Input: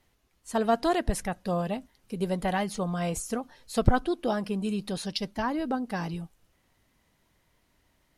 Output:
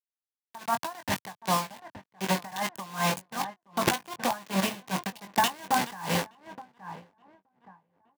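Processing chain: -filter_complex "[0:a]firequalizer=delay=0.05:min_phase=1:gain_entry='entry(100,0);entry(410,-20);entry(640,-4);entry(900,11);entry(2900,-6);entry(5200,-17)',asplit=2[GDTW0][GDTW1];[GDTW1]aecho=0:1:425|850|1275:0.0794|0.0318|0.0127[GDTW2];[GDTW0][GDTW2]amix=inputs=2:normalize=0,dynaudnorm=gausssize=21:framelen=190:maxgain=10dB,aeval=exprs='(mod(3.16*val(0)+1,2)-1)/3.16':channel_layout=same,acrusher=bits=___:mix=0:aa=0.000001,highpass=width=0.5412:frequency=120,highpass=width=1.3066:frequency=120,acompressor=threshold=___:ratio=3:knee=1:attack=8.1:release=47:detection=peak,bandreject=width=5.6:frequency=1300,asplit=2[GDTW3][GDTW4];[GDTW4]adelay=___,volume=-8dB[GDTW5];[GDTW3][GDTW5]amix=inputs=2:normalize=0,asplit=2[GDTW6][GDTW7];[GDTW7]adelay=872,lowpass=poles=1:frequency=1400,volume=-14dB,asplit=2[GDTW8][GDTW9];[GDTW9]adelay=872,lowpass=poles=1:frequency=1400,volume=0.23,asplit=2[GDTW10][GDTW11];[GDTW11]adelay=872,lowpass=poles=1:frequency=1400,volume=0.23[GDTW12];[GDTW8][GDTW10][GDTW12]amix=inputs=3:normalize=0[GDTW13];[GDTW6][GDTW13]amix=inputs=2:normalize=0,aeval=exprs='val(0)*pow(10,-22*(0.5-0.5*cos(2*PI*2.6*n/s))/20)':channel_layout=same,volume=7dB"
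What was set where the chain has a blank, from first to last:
4, -29dB, 21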